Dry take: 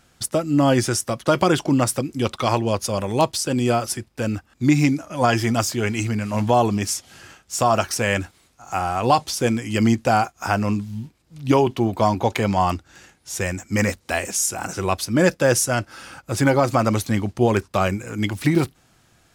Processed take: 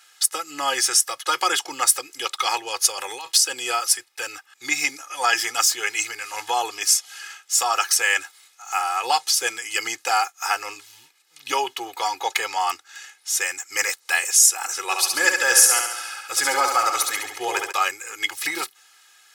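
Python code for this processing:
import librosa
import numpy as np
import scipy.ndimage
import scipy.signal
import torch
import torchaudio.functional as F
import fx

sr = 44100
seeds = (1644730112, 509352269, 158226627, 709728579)

y = fx.over_compress(x, sr, threshold_db=-24.0, ratio=-1.0, at=(2.78, 3.38))
y = fx.room_flutter(y, sr, wall_m=11.8, rt60_s=0.84, at=(14.89, 17.71), fade=0.02)
y = scipy.signal.sosfilt(scipy.signal.butter(2, 1500.0, 'highpass', fs=sr, output='sos'), y)
y = y + 0.96 * np.pad(y, (int(2.4 * sr / 1000.0), 0))[:len(y)]
y = fx.dynamic_eq(y, sr, hz=2700.0, q=1.0, threshold_db=-40.0, ratio=4.0, max_db=-4)
y = y * librosa.db_to_amplitude(5.5)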